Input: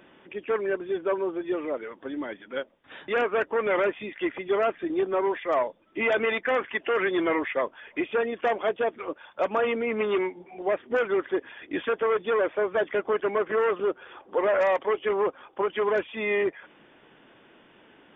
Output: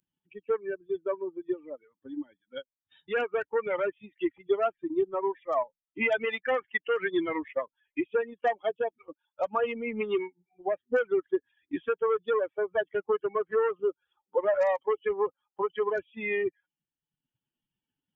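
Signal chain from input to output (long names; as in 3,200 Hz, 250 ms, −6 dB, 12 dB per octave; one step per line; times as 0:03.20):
spectral dynamics exaggerated over time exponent 2
transient designer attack +3 dB, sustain −7 dB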